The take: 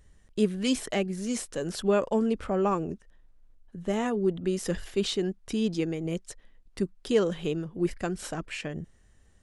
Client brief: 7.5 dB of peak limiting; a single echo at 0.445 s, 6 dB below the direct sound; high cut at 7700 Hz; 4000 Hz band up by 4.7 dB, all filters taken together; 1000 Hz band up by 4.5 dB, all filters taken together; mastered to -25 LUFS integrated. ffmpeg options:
-af "lowpass=7.7k,equalizer=f=1k:t=o:g=5.5,equalizer=f=4k:t=o:g=6,alimiter=limit=-18.5dB:level=0:latency=1,aecho=1:1:445:0.501,volume=5dB"

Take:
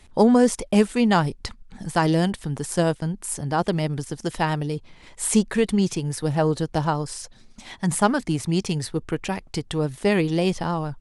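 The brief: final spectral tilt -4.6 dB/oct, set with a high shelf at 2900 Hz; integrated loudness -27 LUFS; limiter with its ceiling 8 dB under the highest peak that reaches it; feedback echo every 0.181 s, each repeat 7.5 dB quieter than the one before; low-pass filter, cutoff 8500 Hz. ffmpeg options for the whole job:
-af "lowpass=8.5k,highshelf=f=2.9k:g=8.5,alimiter=limit=-11.5dB:level=0:latency=1,aecho=1:1:181|362|543|724|905:0.422|0.177|0.0744|0.0312|0.0131,volume=-3.5dB"

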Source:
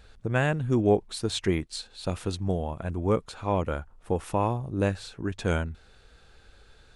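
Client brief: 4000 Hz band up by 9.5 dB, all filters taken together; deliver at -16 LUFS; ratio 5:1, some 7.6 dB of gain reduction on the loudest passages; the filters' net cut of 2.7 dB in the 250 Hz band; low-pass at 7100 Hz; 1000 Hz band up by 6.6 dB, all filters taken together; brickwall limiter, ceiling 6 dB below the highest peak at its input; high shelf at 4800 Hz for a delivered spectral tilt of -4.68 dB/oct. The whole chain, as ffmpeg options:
-af "lowpass=7.1k,equalizer=f=250:t=o:g=-4.5,equalizer=f=1k:t=o:g=8,equalizer=f=4k:t=o:g=7.5,highshelf=f=4.8k:g=7,acompressor=threshold=-25dB:ratio=5,volume=17dB,alimiter=limit=-4dB:level=0:latency=1"

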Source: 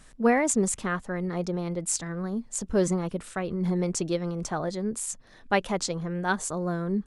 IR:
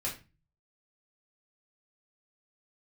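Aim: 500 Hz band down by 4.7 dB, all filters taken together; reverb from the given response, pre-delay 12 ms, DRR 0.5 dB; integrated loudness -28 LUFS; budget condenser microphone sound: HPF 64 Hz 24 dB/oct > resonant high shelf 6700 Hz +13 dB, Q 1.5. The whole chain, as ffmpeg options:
-filter_complex "[0:a]equalizer=f=500:t=o:g=-6,asplit=2[a][b];[1:a]atrim=start_sample=2205,adelay=12[c];[b][c]afir=irnorm=-1:irlink=0,volume=-4dB[d];[a][d]amix=inputs=2:normalize=0,highpass=f=64:w=0.5412,highpass=f=64:w=1.3066,highshelf=f=6.7k:t=q:w=1.5:g=13,volume=-6.5dB"

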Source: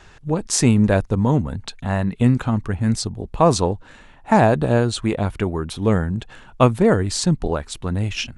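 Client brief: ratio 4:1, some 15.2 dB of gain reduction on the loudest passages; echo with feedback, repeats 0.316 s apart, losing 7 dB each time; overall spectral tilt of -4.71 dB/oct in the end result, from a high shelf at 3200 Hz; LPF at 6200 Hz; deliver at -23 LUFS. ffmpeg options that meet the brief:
-af "lowpass=6.2k,highshelf=f=3.2k:g=8.5,acompressor=threshold=-28dB:ratio=4,aecho=1:1:316|632|948|1264|1580:0.447|0.201|0.0905|0.0407|0.0183,volume=7.5dB"

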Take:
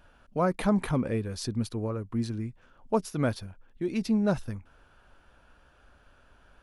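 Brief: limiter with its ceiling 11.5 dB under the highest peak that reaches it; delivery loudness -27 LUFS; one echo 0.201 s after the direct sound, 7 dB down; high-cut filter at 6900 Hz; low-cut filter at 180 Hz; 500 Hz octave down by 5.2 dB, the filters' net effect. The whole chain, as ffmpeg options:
-af "highpass=180,lowpass=6.9k,equalizer=f=500:t=o:g=-6.5,alimiter=level_in=3dB:limit=-24dB:level=0:latency=1,volume=-3dB,aecho=1:1:201:0.447,volume=10.5dB"

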